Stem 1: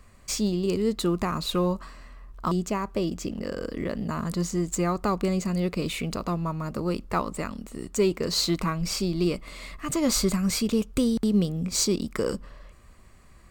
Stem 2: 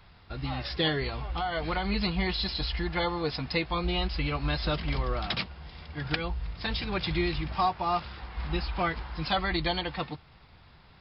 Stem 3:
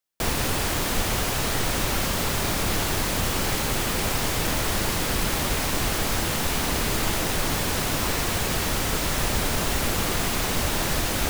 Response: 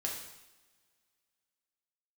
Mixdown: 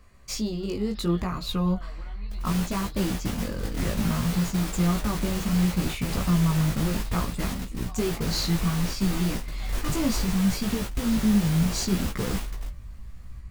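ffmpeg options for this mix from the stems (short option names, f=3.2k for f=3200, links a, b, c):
-filter_complex "[0:a]asubboost=boost=6.5:cutoff=160,alimiter=limit=-14.5dB:level=0:latency=1:release=291,equalizer=f=8.1k:t=o:w=0.27:g=-6.5,volume=1dB,asplit=2[a][b];[1:a]acompressor=threshold=-29dB:ratio=6,adelay=300,volume=-13.5dB[c];[2:a]adelay=2100,volume=-6dB[d];[b]apad=whole_len=590737[e];[d][e]sidechaingate=range=-31dB:threshold=-25dB:ratio=16:detection=peak[f];[a][c][f]amix=inputs=3:normalize=0,flanger=delay=15.5:depth=3.7:speed=0.66"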